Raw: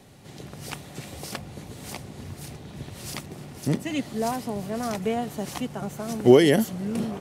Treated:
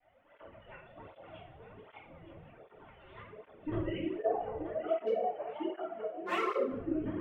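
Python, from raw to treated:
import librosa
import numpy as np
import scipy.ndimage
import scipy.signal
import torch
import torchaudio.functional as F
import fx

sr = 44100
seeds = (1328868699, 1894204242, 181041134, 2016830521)

y = fx.sine_speech(x, sr)
y = fx.env_lowpass_down(y, sr, base_hz=1700.0, full_db=-20.0)
y = fx.lpc_vocoder(y, sr, seeds[0], excitation='pitch_kept', order=10)
y = y + 10.0 ** (-11.5 / 20.0) * np.pad(y, (int(924 * sr / 1000.0), 0))[:len(y)]
y = 10.0 ** (-19.0 / 20.0) * (np.abs((y / 10.0 ** (-19.0 / 20.0) + 3.0) % 4.0 - 2.0) - 1.0)
y = fx.highpass(y, sr, hz=310.0, slope=12, at=(4.62, 6.68))
y = fx.room_shoebox(y, sr, seeds[1], volume_m3=130.0, walls='mixed', distance_m=2.5)
y = fx.rider(y, sr, range_db=4, speed_s=0.5)
y = fx.high_shelf(y, sr, hz=2000.0, db=-10.0)
y = fx.flanger_cancel(y, sr, hz=1.3, depth_ms=4.7)
y = y * librosa.db_to_amplitude(-8.0)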